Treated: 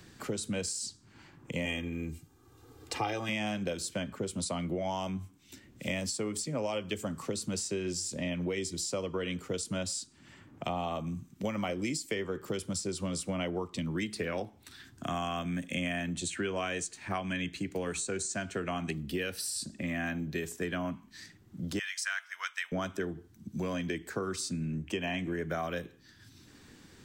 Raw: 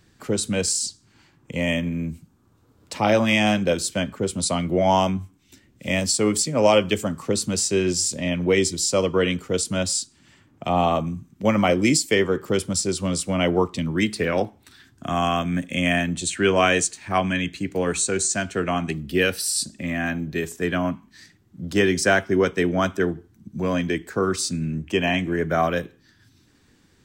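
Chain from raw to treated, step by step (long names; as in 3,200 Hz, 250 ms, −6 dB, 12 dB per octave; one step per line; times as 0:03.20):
0:21.79–0:22.72: inverse Chebyshev high-pass filter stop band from 370 Hz, stop band 60 dB
downward compressor, threshold −24 dBFS, peak gain reduction 11.5 dB
0:01.65–0:03.29: comb filter 2.5 ms, depth 79%
multiband upward and downward compressor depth 40%
level −6.5 dB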